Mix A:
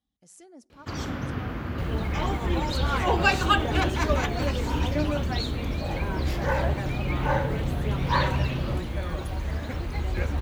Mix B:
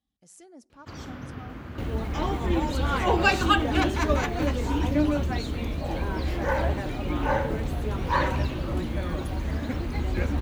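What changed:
first sound -7.5 dB; second sound: add peaking EQ 260 Hz +7.5 dB 0.78 oct

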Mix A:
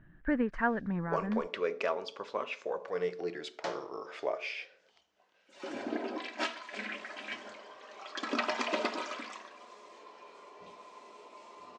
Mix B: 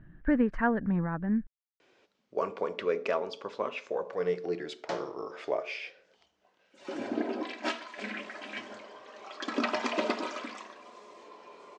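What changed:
background: entry +1.25 s; master: add bass shelf 480 Hz +6.5 dB

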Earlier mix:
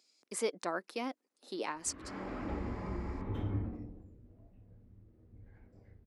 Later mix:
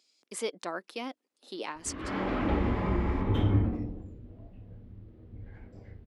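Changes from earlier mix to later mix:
background +10.5 dB; master: add peaking EQ 3.2 kHz +6 dB 0.56 oct

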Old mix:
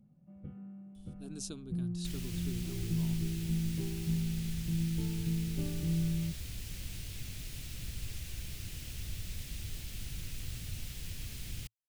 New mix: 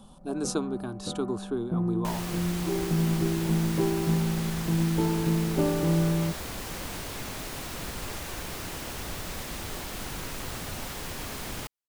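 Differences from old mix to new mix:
speech: entry -0.95 s; master: remove FFT filter 110 Hz 0 dB, 270 Hz -15 dB, 1 kHz -27 dB, 2.6 kHz -8 dB

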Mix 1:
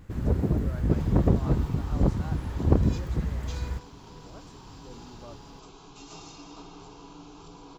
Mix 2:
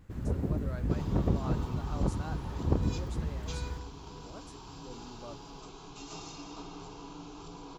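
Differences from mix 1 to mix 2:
speech: remove distance through air 90 m; first sound -8.5 dB; reverb: on, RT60 2.6 s

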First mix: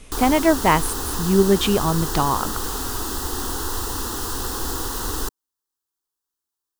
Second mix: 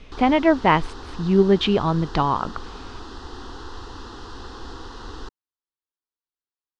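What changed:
background -8.5 dB; master: add low-pass 4.6 kHz 24 dB/octave

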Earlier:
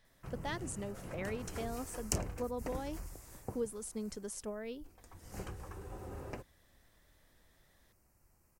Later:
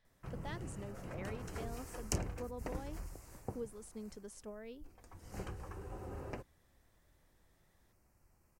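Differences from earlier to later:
speech -6.5 dB; master: add treble shelf 6.4 kHz -6.5 dB

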